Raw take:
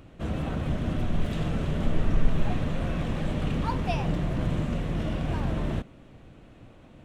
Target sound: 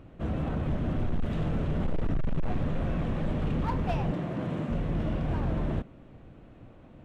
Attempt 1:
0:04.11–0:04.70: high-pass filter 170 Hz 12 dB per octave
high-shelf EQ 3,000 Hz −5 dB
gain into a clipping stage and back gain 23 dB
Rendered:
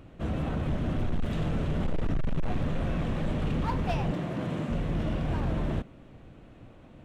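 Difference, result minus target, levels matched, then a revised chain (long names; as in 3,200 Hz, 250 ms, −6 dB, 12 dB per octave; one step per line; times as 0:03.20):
8,000 Hz band +6.0 dB
0:04.11–0:04.70: high-pass filter 170 Hz 12 dB per octave
high-shelf EQ 3,000 Hz −13 dB
gain into a clipping stage and back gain 23 dB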